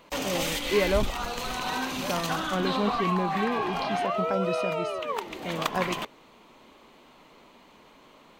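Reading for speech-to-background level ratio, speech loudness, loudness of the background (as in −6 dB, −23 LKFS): −1.5 dB, −31.5 LKFS, −30.0 LKFS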